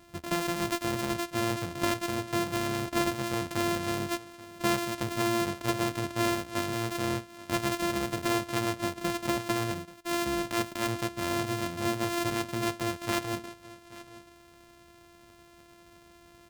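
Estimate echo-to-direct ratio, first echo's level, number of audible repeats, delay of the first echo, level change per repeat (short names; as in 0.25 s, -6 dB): -19.0 dB, -19.0 dB, 1, 0.833 s, no steady repeat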